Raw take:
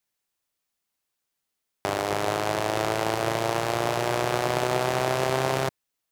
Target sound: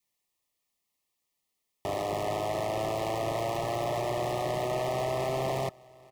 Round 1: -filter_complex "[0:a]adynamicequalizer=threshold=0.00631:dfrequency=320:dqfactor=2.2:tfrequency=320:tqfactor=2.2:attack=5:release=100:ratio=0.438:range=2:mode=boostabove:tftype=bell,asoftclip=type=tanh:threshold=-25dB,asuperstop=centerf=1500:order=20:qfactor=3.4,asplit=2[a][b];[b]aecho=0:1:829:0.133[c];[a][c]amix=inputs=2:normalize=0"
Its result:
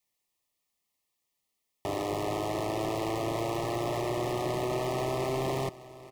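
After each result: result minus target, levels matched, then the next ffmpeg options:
250 Hz band +5.0 dB; echo-to-direct +7 dB
-filter_complex "[0:a]adynamicequalizer=threshold=0.00631:dfrequency=660:dqfactor=2.2:tfrequency=660:tqfactor=2.2:attack=5:release=100:ratio=0.438:range=2:mode=boostabove:tftype=bell,asoftclip=type=tanh:threshold=-25dB,asuperstop=centerf=1500:order=20:qfactor=3.4,asplit=2[a][b];[b]aecho=0:1:829:0.133[c];[a][c]amix=inputs=2:normalize=0"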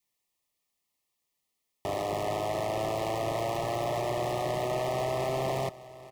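echo-to-direct +7 dB
-filter_complex "[0:a]adynamicequalizer=threshold=0.00631:dfrequency=660:dqfactor=2.2:tfrequency=660:tqfactor=2.2:attack=5:release=100:ratio=0.438:range=2:mode=boostabove:tftype=bell,asoftclip=type=tanh:threshold=-25dB,asuperstop=centerf=1500:order=20:qfactor=3.4,asplit=2[a][b];[b]aecho=0:1:829:0.0596[c];[a][c]amix=inputs=2:normalize=0"

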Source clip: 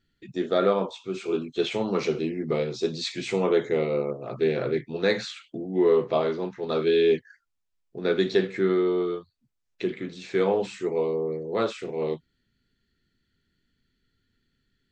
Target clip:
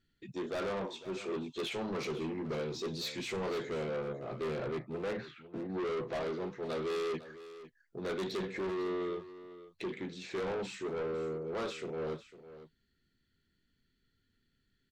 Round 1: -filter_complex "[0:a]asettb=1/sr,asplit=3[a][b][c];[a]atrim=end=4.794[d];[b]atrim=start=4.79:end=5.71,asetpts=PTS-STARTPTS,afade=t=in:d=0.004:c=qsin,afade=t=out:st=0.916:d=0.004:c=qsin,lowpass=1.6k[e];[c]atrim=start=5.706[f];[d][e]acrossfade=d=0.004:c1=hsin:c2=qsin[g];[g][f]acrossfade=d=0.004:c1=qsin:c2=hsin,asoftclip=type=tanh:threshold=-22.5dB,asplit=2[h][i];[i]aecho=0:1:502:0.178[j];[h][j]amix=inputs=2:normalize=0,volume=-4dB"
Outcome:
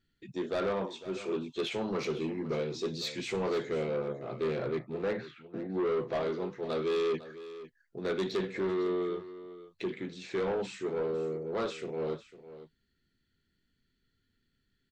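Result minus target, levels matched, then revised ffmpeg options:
soft clip: distortion -5 dB
-filter_complex "[0:a]asettb=1/sr,asplit=3[a][b][c];[a]atrim=end=4.794[d];[b]atrim=start=4.79:end=5.71,asetpts=PTS-STARTPTS,afade=t=in:d=0.004:c=qsin,afade=t=out:st=0.916:d=0.004:c=qsin,lowpass=1.6k[e];[c]atrim=start=5.706[f];[d][e]acrossfade=d=0.004:c1=hsin:c2=qsin[g];[g][f]acrossfade=d=0.004:c1=qsin:c2=hsin,asoftclip=type=tanh:threshold=-29dB,asplit=2[h][i];[i]aecho=0:1:502:0.178[j];[h][j]amix=inputs=2:normalize=0,volume=-4dB"

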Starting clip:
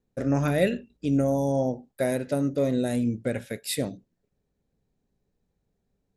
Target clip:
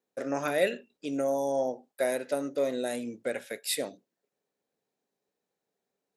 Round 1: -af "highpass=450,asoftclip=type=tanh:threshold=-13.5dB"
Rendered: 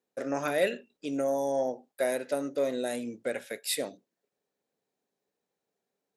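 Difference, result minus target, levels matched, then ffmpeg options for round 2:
soft clip: distortion +12 dB
-af "highpass=450,asoftclip=type=tanh:threshold=-7dB"

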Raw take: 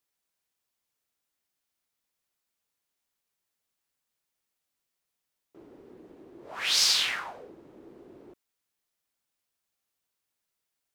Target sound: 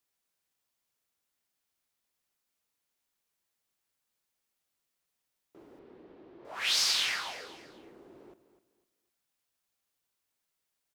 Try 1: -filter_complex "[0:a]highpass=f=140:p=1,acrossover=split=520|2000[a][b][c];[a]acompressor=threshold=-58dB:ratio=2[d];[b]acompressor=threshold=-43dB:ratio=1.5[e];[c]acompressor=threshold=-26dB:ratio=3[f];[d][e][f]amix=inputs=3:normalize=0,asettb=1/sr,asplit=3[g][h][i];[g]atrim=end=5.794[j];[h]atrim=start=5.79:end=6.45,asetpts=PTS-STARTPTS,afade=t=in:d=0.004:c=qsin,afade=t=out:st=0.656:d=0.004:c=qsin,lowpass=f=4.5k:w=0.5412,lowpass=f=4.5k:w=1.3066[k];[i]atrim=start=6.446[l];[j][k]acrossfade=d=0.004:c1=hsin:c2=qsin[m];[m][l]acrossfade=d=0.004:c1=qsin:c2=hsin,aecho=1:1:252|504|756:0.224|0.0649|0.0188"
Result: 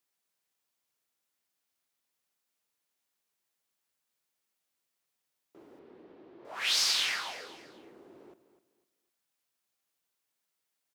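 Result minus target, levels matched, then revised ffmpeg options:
125 Hz band -3.0 dB
-filter_complex "[0:a]acrossover=split=520|2000[a][b][c];[a]acompressor=threshold=-58dB:ratio=2[d];[b]acompressor=threshold=-43dB:ratio=1.5[e];[c]acompressor=threshold=-26dB:ratio=3[f];[d][e][f]amix=inputs=3:normalize=0,asettb=1/sr,asplit=3[g][h][i];[g]atrim=end=5.794[j];[h]atrim=start=5.79:end=6.45,asetpts=PTS-STARTPTS,afade=t=in:d=0.004:c=qsin,afade=t=out:st=0.656:d=0.004:c=qsin,lowpass=f=4.5k:w=0.5412,lowpass=f=4.5k:w=1.3066[k];[i]atrim=start=6.446[l];[j][k]acrossfade=d=0.004:c1=hsin:c2=qsin[m];[m][l]acrossfade=d=0.004:c1=qsin:c2=hsin,aecho=1:1:252|504|756:0.224|0.0649|0.0188"

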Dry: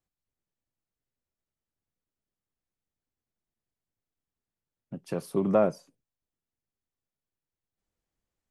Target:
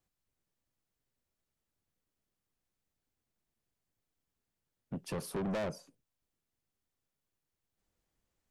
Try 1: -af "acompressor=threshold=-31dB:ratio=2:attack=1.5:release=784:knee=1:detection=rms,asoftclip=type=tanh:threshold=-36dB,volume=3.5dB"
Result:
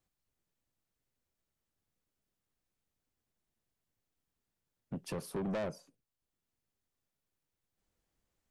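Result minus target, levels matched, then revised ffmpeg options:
compressor: peak gain reduction +4 dB
-af "acompressor=threshold=-23.5dB:ratio=2:attack=1.5:release=784:knee=1:detection=rms,asoftclip=type=tanh:threshold=-36dB,volume=3.5dB"

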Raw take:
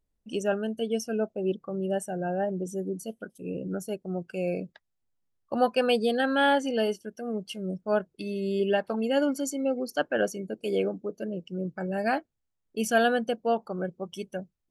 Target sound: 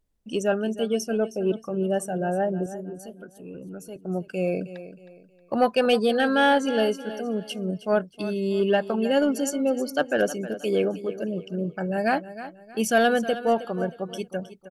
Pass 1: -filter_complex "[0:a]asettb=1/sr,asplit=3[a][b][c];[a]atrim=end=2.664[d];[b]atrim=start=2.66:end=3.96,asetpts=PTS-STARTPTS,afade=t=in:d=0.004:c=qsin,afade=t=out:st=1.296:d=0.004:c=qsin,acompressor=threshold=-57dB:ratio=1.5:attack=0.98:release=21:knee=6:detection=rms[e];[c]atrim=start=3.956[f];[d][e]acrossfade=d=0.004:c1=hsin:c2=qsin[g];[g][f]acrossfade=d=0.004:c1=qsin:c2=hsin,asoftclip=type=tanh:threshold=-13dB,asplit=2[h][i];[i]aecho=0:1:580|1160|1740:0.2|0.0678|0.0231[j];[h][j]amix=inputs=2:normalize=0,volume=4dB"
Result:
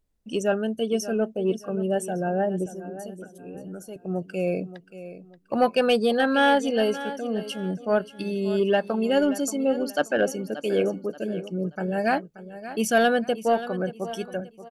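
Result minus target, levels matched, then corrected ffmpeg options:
echo 0.265 s late
-filter_complex "[0:a]asettb=1/sr,asplit=3[a][b][c];[a]atrim=end=2.664[d];[b]atrim=start=2.66:end=3.96,asetpts=PTS-STARTPTS,afade=t=in:d=0.004:c=qsin,afade=t=out:st=1.296:d=0.004:c=qsin,acompressor=threshold=-57dB:ratio=1.5:attack=0.98:release=21:knee=6:detection=rms[e];[c]atrim=start=3.956[f];[d][e]acrossfade=d=0.004:c1=hsin:c2=qsin[g];[g][f]acrossfade=d=0.004:c1=qsin:c2=hsin,asoftclip=type=tanh:threshold=-13dB,asplit=2[h][i];[i]aecho=0:1:315|630|945:0.2|0.0678|0.0231[j];[h][j]amix=inputs=2:normalize=0,volume=4dB"

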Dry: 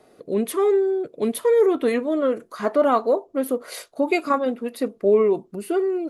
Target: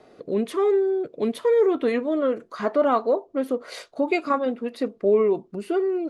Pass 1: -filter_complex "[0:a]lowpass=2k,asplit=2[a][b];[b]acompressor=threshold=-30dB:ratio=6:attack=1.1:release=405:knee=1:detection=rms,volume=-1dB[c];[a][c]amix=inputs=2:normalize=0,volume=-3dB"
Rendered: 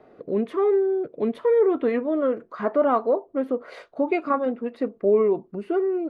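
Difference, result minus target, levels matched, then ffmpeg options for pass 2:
8000 Hz band -18.0 dB
-filter_complex "[0:a]lowpass=5.7k,asplit=2[a][b];[b]acompressor=threshold=-30dB:ratio=6:attack=1.1:release=405:knee=1:detection=rms,volume=-1dB[c];[a][c]amix=inputs=2:normalize=0,volume=-3dB"

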